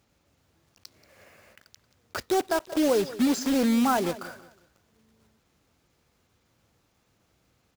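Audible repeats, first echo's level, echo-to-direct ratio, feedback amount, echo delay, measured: 2, −17.0 dB, −16.5 dB, 33%, 182 ms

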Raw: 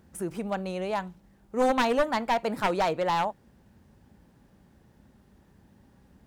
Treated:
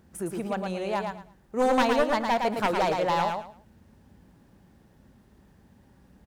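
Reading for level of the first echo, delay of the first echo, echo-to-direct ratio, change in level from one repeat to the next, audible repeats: −4.5 dB, 112 ms, −4.5 dB, −13.0 dB, 3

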